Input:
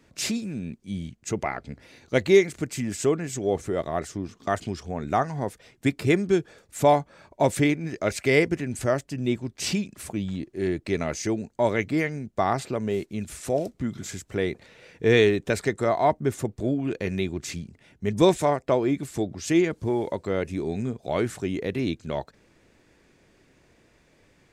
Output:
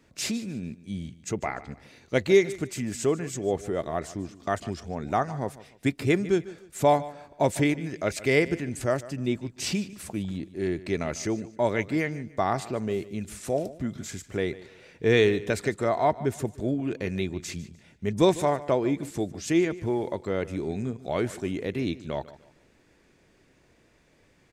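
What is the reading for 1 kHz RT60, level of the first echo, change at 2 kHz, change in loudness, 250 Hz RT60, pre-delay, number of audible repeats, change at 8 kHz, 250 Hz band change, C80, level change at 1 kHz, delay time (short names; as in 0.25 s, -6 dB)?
none, -17.5 dB, -2.0 dB, -2.0 dB, none, none, 2, -2.0 dB, -2.0 dB, none, -2.0 dB, 0.149 s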